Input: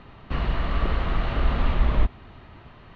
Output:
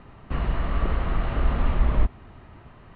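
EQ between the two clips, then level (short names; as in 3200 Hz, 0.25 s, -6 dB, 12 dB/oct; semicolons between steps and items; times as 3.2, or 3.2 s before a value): air absorption 310 m; 0.0 dB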